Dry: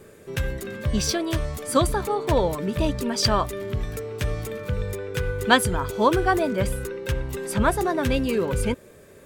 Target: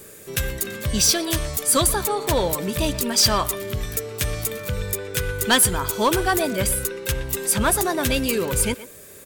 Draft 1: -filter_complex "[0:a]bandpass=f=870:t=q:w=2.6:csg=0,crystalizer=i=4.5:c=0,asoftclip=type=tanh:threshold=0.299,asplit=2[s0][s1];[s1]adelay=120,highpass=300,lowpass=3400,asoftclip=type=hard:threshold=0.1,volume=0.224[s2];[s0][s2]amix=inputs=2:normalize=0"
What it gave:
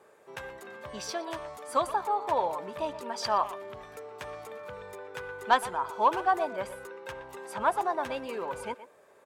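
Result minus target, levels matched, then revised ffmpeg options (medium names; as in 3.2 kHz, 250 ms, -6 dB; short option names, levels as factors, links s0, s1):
1 kHz band +8.5 dB
-filter_complex "[0:a]crystalizer=i=4.5:c=0,asoftclip=type=tanh:threshold=0.299,asplit=2[s0][s1];[s1]adelay=120,highpass=300,lowpass=3400,asoftclip=type=hard:threshold=0.1,volume=0.224[s2];[s0][s2]amix=inputs=2:normalize=0"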